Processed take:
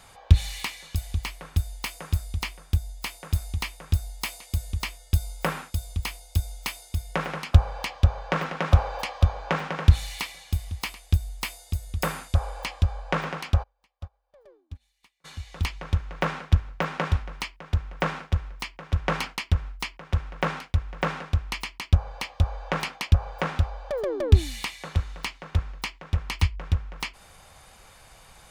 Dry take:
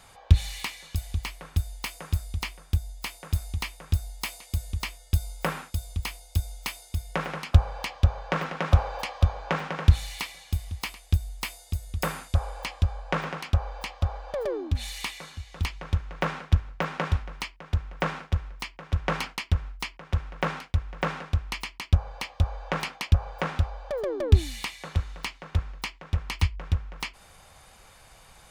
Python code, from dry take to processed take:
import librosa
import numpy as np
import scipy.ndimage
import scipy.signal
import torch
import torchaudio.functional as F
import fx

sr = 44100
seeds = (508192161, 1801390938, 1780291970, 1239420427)

y = fx.upward_expand(x, sr, threshold_db=-37.0, expansion=2.5, at=(13.62, 15.24), fade=0.02)
y = y * librosa.db_to_amplitude(1.5)